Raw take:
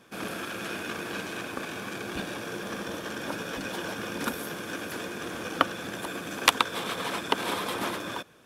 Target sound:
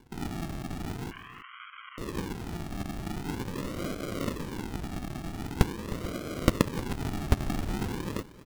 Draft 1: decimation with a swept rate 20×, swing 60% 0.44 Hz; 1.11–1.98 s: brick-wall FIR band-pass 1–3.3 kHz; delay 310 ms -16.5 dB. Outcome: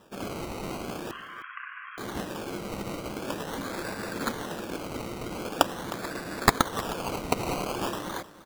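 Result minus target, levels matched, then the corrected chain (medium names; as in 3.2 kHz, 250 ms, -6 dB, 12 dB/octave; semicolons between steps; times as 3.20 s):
decimation with a swept rate: distortion -31 dB
decimation with a swept rate 69×, swing 60% 0.44 Hz; 1.11–1.98 s: brick-wall FIR band-pass 1–3.3 kHz; delay 310 ms -16.5 dB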